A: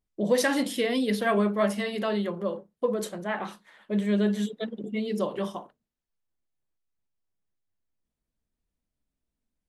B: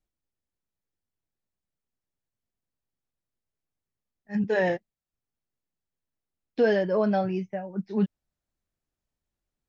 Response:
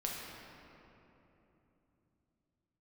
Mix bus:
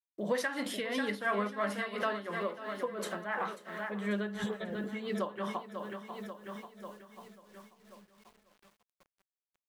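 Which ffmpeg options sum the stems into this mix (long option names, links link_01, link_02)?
-filter_complex "[0:a]equalizer=frequency=1400:width=0.79:gain=12.5,bandreject=frequency=50:width_type=h:width=6,bandreject=frequency=100:width_type=h:width=6,bandreject=frequency=150:width_type=h:width=6,volume=1.5dB,asplit=3[link_01][link_02][link_03];[link_02]volume=-11dB[link_04];[1:a]aemphasis=mode=reproduction:type=bsi,volume=-7.5dB[link_05];[link_03]apad=whole_len=427107[link_06];[link_05][link_06]sidechaingate=range=-33dB:threshold=-34dB:ratio=16:detection=peak[link_07];[link_04]aecho=0:1:541|1082|1623|2164|2705|3246|3787|4328:1|0.52|0.27|0.141|0.0731|0.038|0.0198|0.0103[link_08];[link_01][link_07][link_08]amix=inputs=3:normalize=0,acrusher=bits=9:mix=0:aa=0.000001,tremolo=f=2.9:d=0.7,acompressor=threshold=-39dB:ratio=2"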